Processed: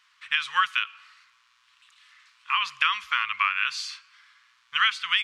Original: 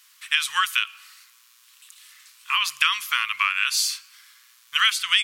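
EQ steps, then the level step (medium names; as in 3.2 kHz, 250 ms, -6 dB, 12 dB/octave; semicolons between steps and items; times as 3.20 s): tape spacing loss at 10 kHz 29 dB; +4.0 dB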